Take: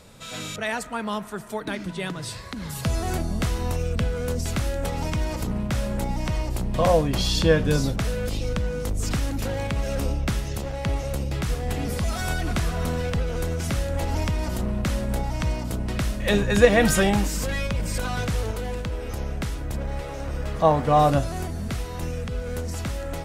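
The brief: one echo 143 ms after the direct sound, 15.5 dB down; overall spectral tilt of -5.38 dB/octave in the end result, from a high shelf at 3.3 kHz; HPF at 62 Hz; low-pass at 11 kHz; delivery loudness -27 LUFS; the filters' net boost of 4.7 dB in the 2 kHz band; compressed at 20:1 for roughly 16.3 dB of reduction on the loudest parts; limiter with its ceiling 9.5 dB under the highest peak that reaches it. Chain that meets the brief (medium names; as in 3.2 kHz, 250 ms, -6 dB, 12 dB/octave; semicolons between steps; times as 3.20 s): high-pass 62 Hz; low-pass 11 kHz; peaking EQ 2 kHz +7 dB; treble shelf 3.3 kHz -4 dB; compression 20:1, threshold -25 dBFS; peak limiter -22 dBFS; delay 143 ms -15.5 dB; trim +5 dB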